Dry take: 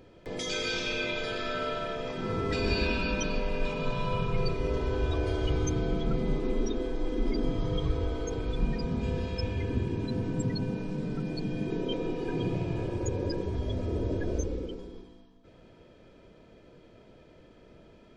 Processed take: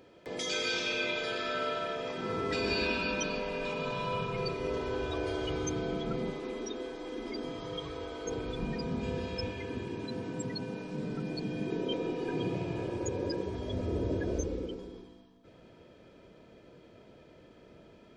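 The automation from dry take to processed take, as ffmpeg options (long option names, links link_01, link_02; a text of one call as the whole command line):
ffmpeg -i in.wav -af "asetnsamples=nb_out_samples=441:pad=0,asendcmd='6.3 highpass f 660;8.26 highpass f 190;9.51 highpass f 430;10.93 highpass f 210;13.73 highpass f 84',highpass=frequency=280:poles=1" out.wav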